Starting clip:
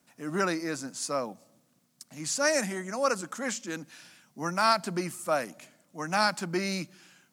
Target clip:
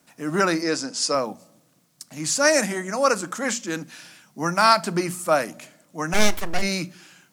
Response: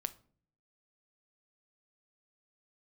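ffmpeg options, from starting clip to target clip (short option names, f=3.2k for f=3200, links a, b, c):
-filter_complex "[0:a]asettb=1/sr,asplit=3[a][b][c];[a]atrim=end=0.624[d];[b]atrim=start=0.62:end=1.15,asetpts=PTS-STARTPTS,afade=t=in:d=0.004:c=qsin,afade=t=out:st=0.526:d=0.004:c=qsin,highpass=180,equalizer=f=480:t=q:w=4:g=4,equalizer=f=2.9k:t=q:w=4:g=4,equalizer=f=5.1k:t=q:w=4:g=9,lowpass=f=9.5k:w=0.5412,lowpass=f=9.5k:w=1.3066[e];[c]atrim=start=1.146[f];[d][e]acrossfade=d=0.004:c1=hsin:c2=qsin[g];[g][f]acrossfade=d=0.004:c1=qsin:c2=hsin,asplit=3[h][i][j];[h]afade=t=out:st=6.13:d=0.02[k];[i]aeval=exprs='abs(val(0))':c=same,afade=t=in:st=6.13:d=0.02,afade=t=out:st=6.61:d=0.02[l];[j]afade=t=in:st=6.61:d=0.02[m];[k][l][m]amix=inputs=3:normalize=0,bandreject=f=60:t=h:w=6,bandreject=f=120:t=h:w=6,bandreject=f=180:t=h:w=6,bandreject=f=240:t=h:w=6,asplit=2[n][o];[1:a]atrim=start_sample=2205,atrim=end_sample=3528[p];[o][p]afir=irnorm=-1:irlink=0,volume=3.5dB[q];[n][q]amix=inputs=2:normalize=0"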